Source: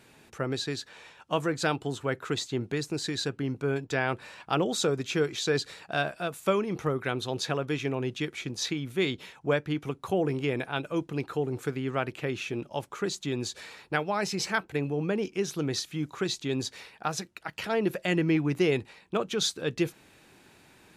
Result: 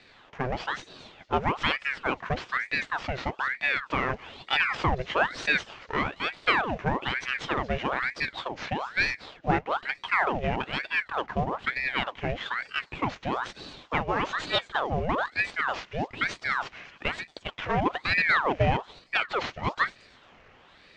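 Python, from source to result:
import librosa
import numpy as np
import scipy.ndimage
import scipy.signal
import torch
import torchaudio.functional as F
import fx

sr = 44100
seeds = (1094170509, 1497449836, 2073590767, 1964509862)

y = fx.cvsd(x, sr, bps=32000)
y = fx.high_shelf_res(y, sr, hz=3100.0, db=-10.5, q=1.5)
y = fx.echo_wet_highpass(y, sr, ms=227, feedback_pct=38, hz=4700.0, wet_db=-10)
y = fx.ring_lfo(y, sr, carrier_hz=1200.0, swing_pct=80, hz=1.1)
y = y * librosa.db_to_amplitude(4.5)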